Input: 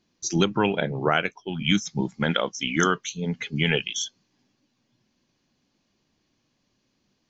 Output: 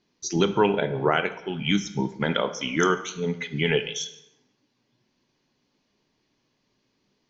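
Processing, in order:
low-pass filter 6,300 Hz 24 dB per octave
low-shelf EQ 170 Hz −4.5 dB
dense smooth reverb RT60 0.85 s, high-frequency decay 0.75×, DRR 9 dB
dynamic equaliser 2,500 Hz, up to −3 dB, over −34 dBFS, Q 0.79
hollow resonant body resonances 420/930/2,000 Hz, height 6 dB

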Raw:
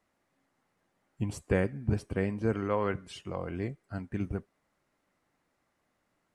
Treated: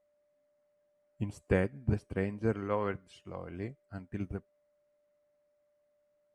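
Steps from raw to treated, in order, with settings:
steady tone 590 Hz −60 dBFS
expander for the loud parts 1.5 to 1, over −46 dBFS

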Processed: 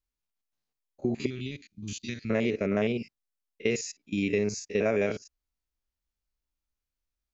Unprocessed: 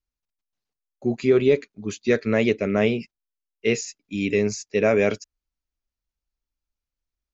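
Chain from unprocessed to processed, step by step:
spectrum averaged block by block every 50 ms
downward compressor 2.5 to 1, threshold −25 dBFS, peak gain reduction 8 dB
0:01.26–0:02.30: drawn EQ curve 110 Hz 0 dB, 310 Hz −8 dB, 450 Hz −25 dB, 1,400 Hz −15 dB, 3,000 Hz +2 dB

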